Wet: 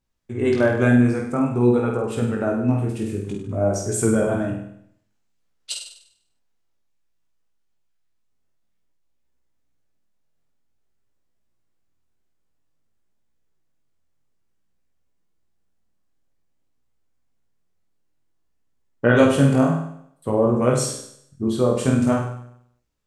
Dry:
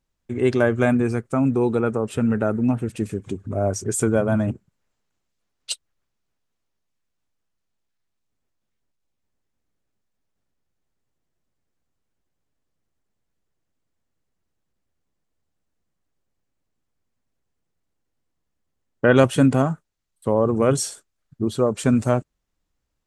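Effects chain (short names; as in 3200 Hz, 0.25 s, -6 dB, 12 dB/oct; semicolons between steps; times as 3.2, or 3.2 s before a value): flutter echo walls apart 8.5 m, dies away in 0.68 s; chorus 0.53 Hz, delay 16 ms, depth 7.9 ms; gain +1.5 dB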